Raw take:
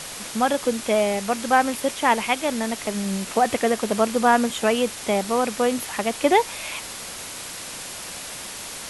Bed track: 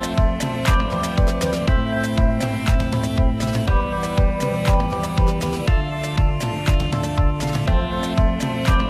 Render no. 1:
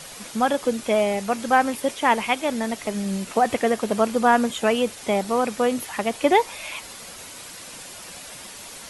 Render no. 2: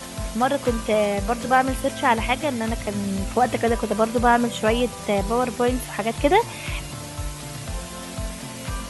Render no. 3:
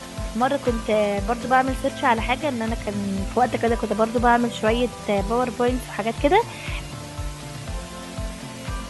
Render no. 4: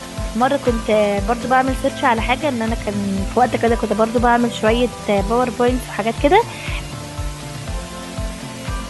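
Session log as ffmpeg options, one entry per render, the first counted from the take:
-af "afftdn=nr=7:nf=-36"
-filter_complex "[1:a]volume=-13.5dB[a];[0:a][a]amix=inputs=2:normalize=0"
-af "highshelf=f=9.1k:g=-10.5"
-af "volume=5dB,alimiter=limit=-3dB:level=0:latency=1"

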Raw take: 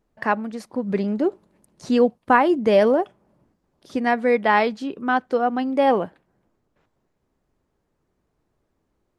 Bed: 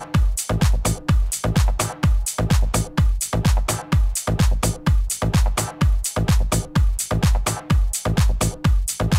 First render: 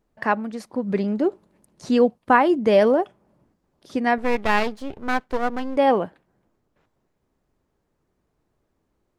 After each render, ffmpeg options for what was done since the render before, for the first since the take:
-filter_complex "[0:a]asettb=1/sr,asplit=3[a][b][c];[a]atrim=end=4.184[d];[b]atrim=start=4.18:end=5.77,asetpts=PTS-STARTPTS,afade=t=in:d=0.004:c=qsin,afade=t=out:st=1.586:d=0.004:c=qsin,aeval=exprs='max(val(0),0)':c=same[e];[c]atrim=start=5.766[f];[d][e]acrossfade=d=0.004:c1=hsin:c2=qsin[g];[g][f]acrossfade=d=0.004:c1=qsin:c2=hsin"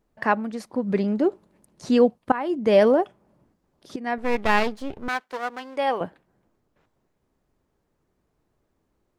-filter_complex "[0:a]asettb=1/sr,asplit=3[a][b][c];[a]atrim=end=5.084[d];[b]atrim=start=5.08:end=6.01,asetpts=PTS-STARTPTS,afade=t=in:d=0.004:c=qsin,afade=t=out:st=0.926:d=0.004:c=qsin,highpass=f=1.1k:p=1[e];[c]atrim=start=6.006[f];[d][e]acrossfade=d=0.004:c1=hsin:c2=qsin[g];[g][f]acrossfade=d=0.004:c1=qsin:c2=hsin,asplit=3[h][i][j];[h]atrim=end=2.32,asetpts=PTS-STARTPTS,afade=t=out:st=2.316:d=0.004:c=hsin:silence=0.105925[k];[i]atrim=start=2.32:end=3.96,asetpts=PTS-STARTPTS,afade=t=in:d=0.46:silence=0.105925,afade=t=out:st=1.636:d=0.004:c=hsin:silence=0.199526[l];[j]atrim=start=3.96,asetpts=PTS-STARTPTS,afade=t=in:d=0.46:silence=0.199526[m];[k][l][m]concat=n=3:v=0:a=1"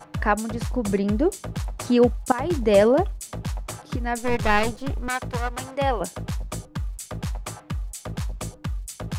-filter_complex "[1:a]volume=-12dB[a];[0:a][a]amix=inputs=2:normalize=0"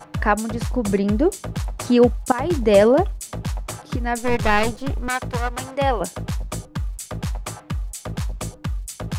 -af "volume=3dB,alimiter=limit=-3dB:level=0:latency=1"

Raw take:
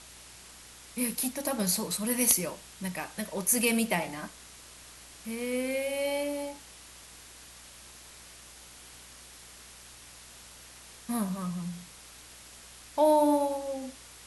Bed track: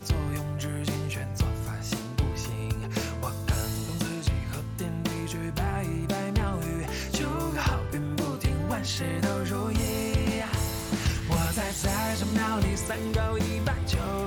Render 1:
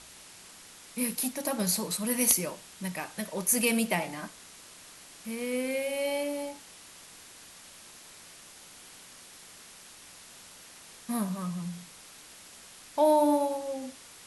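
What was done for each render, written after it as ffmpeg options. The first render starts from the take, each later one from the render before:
-af "bandreject=f=60:t=h:w=4,bandreject=f=120:t=h:w=4"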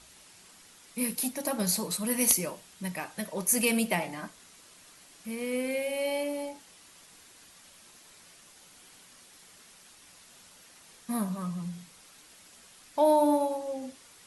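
-af "afftdn=nr=6:nf=-51"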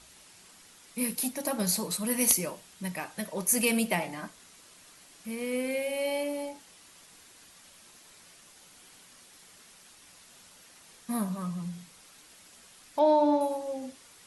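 -filter_complex "[0:a]asettb=1/sr,asplit=3[a][b][c];[a]atrim=end=12.994[d];[b]atrim=start=12.99:end=13.41,asetpts=PTS-STARTPTS,afade=t=in:d=0.004:c=qsin,afade=t=out:st=0.416:d=0.004:c=qsin,lowpass=f=6.2k:w=0.5412,lowpass=f=6.2k:w=1.3066[e];[c]atrim=start=13.406[f];[d][e]acrossfade=d=0.004:c1=hsin:c2=qsin[g];[g][f]acrossfade=d=0.004:c1=qsin:c2=hsin"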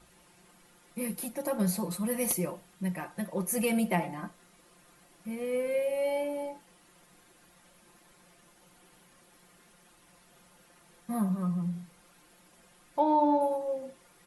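-af "equalizer=f=5.7k:t=o:w=2.8:g=-13,aecho=1:1:5.7:0.68"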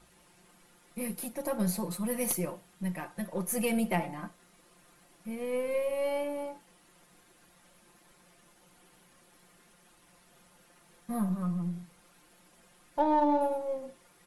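-af "aeval=exprs='if(lt(val(0),0),0.708*val(0),val(0))':c=same"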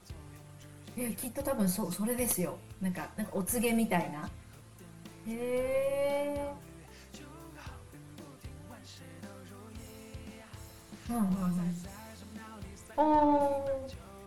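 -filter_complex "[1:a]volume=-20.5dB[a];[0:a][a]amix=inputs=2:normalize=0"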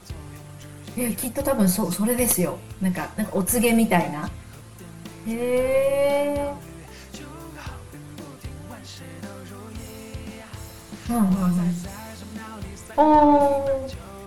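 -af "volume=10.5dB"

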